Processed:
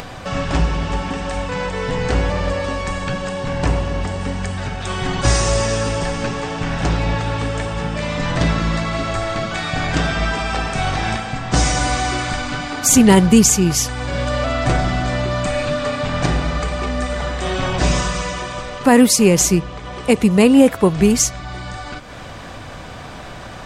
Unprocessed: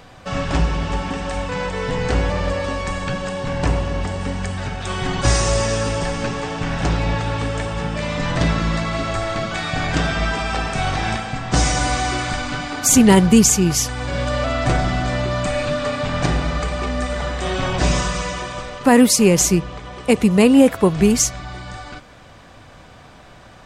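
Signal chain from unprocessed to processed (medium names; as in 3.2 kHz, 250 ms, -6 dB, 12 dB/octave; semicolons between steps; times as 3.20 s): upward compressor, threshold -24 dBFS; trim +1 dB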